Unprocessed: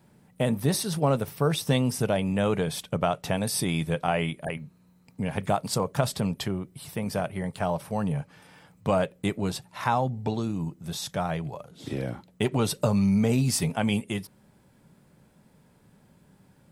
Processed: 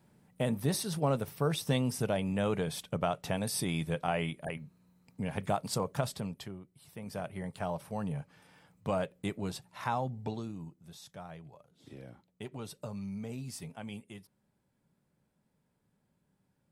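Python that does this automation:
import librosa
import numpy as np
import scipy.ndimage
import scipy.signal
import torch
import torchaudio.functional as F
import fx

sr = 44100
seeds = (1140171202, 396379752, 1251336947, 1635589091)

y = fx.gain(x, sr, db=fx.line((5.91, -6.0), (6.76, -17.5), (7.31, -8.0), (10.26, -8.0), (10.92, -17.5)))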